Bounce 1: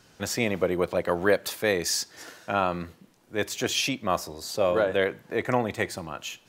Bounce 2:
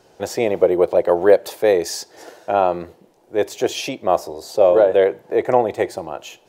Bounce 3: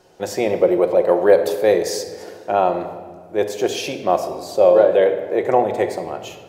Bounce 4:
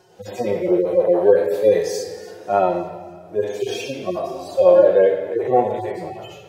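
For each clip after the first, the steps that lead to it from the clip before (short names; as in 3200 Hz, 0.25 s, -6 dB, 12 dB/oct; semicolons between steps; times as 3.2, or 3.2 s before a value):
band shelf 550 Hz +12 dB; gain -1 dB
shoebox room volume 1800 m³, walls mixed, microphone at 0.96 m; gain -1 dB
median-filter separation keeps harmonic; thin delay 0.284 s, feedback 49%, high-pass 1800 Hz, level -19 dB; gain +1.5 dB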